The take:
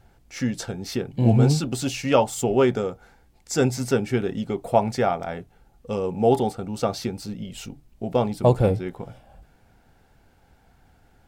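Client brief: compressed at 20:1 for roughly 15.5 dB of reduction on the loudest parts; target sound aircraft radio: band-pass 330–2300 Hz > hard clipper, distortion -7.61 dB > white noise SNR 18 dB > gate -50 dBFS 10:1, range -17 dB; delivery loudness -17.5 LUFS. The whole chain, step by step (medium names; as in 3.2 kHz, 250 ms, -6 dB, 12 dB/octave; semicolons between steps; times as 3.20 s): compression 20:1, threshold -27 dBFS; band-pass 330–2300 Hz; hard clipper -34 dBFS; white noise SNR 18 dB; gate -50 dBFS 10:1, range -17 dB; trim +23 dB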